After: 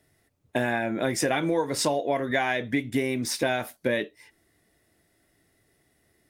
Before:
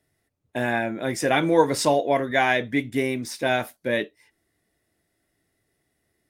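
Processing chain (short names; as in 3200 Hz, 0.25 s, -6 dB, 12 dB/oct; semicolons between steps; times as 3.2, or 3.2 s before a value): compressor 8:1, threshold -28 dBFS, peak gain reduction 16 dB; gain +6 dB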